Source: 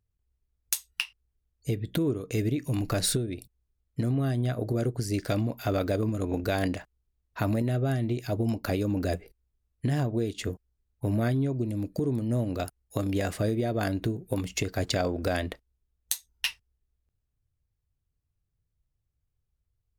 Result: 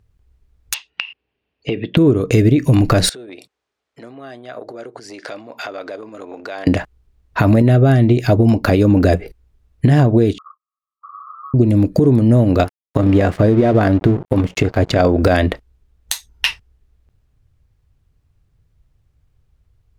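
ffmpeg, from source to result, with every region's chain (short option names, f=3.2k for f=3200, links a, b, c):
-filter_complex "[0:a]asettb=1/sr,asplit=3[a][b][c];[a]atrim=end=0.744[d];[b]atrim=start=0.74:end=1.97,asetpts=PTS-STARTPTS,afade=t=in:d=0.004:c=qsin,afade=t=out:st=1.226:d=0.004:c=qsin,highpass=270,equalizer=f=1.3k:t=q:w=4:g=-5,equalizer=f=2.7k:t=q:w=4:g=10,equalizer=f=3.9k:t=q:w=4:g=-3,lowpass=f=4.2k:w=0.5412,lowpass=f=4.2k:w=1.3066,acompressor=threshold=-34dB:ratio=10:attack=3.2:release=140:knee=1:detection=peak[e];[c]atrim=start=1.966[f];[d][e]acrossfade=d=0.004:c1=hsin:c2=qsin[g];[g][f]acrossfade=d=0.004:c1=qsin:c2=hsin,asettb=1/sr,asplit=3[h][i][j];[h]atrim=end=3.094[k];[i]atrim=start=3.09:end=6.67,asetpts=PTS-STARTPTS,afade=t=in:d=0.004:c=qsin,afade=t=out:st=3.576:d=0.004:c=qsin,acompressor=threshold=-39dB:ratio=16:attack=3.2:release=140:knee=1:detection=peak,highpass=540,lowpass=7.1k[l];[j]atrim=start=6.666[m];[k][l]acrossfade=d=0.004:c1=hsin:c2=qsin[n];[n][m]acrossfade=d=0.004:c1=qsin:c2=hsin,asettb=1/sr,asplit=3[o][p][q];[o]atrim=end=10.384[r];[p]atrim=start=10.38:end=11.54,asetpts=PTS-STARTPTS,afade=t=in:d=0.004:c=qsin,afade=t=out:st=1.156:d=0.004:c=qsin,acompressor=threshold=-39dB:ratio=4:attack=3.2:release=140:knee=1:detection=peak,aeval=exprs='(mod(84.1*val(0)+1,2)-1)/84.1':c=same,asuperpass=centerf=1200:order=8:qfactor=5.8[s];[q]atrim=start=11.536[t];[r][s]acrossfade=d=0.004:c1=hsin:c2=qsin[u];[u][t]acrossfade=d=0.004:c1=qsin:c2=hsin,asettb=1/sr,asplit=3[v][w][x];[v]atrim=end=12.644[y];[w]atrim=start=12.64:end=15,asetpts=PTS-STARTPTS,afade=t=in:d=0.004:c=qsin,afade=t=out:st=2.356:d=0.004:c=qsin,highshelf=f=2.7k:g=-10,bandreject=f=60:t=h:w=6,bandreject=f=120:t=h:w=6,bandreject=f=180:t=h:w=6,aeval=exprs='sgn(val(0))*max(abs(val(0))-0.00501,0)':c=same[z];[x]atrim=start=14.996[aa];[y][z]acrossfade=d=0.004:c1=hsin:c2=qsin[ab];[ab][aa]acrossfade=d=0.004:c1=qsin:c2=hsin,lowpass=f=2.7k:p=1,acompressor=threshold=-29dB:ratio=3,alimiter=level_in=21dB:limit=-1dB:release=50:level=0:latency=1,volume=-1dB"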